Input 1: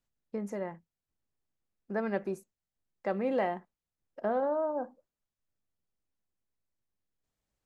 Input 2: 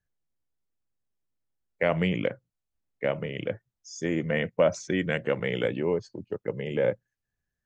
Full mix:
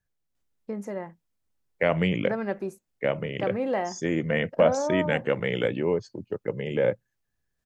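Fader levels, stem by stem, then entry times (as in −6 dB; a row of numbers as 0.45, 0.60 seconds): +2.5, +1.5 decibels; 0.35, 0.00 seconds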